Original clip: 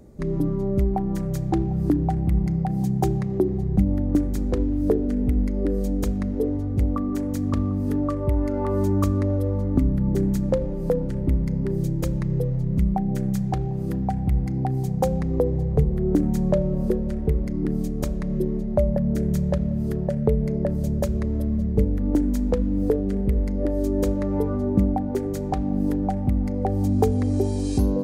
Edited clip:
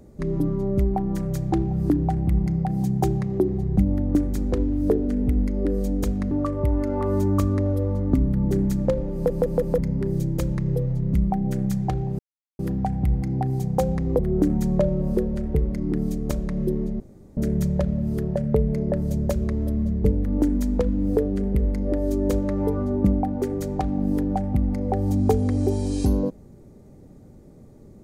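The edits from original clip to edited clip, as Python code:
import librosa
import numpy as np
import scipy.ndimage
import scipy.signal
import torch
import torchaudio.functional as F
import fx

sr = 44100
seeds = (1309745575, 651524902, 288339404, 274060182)

y = fx.edit(x, sr, fx.cut(start_s=6.31, length_s=1.64),
    fx.stutter_over(start_s=10.78, slice_s=0.16, count=4),
    fx.insert_silence(at_s=13.83, length_s=0.4),
    fx.cut(start_s=15.43, length_s=0.49),
    fx.room_tone_fill(start_s=18.73, length_s=0.37), tone=tone)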